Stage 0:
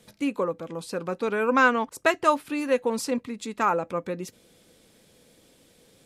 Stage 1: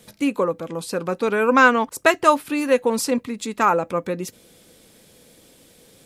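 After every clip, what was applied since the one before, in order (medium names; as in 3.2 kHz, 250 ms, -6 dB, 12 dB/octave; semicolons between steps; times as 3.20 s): treble shelf 11 kHz +8 dB; trim +5.5 dB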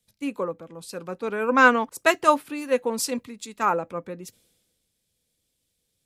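three bands expanded up and down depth 70%; trim -6.5 dB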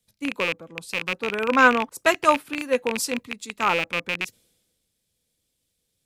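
rattle on loud lows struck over -40 dBFS, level -13 dBFS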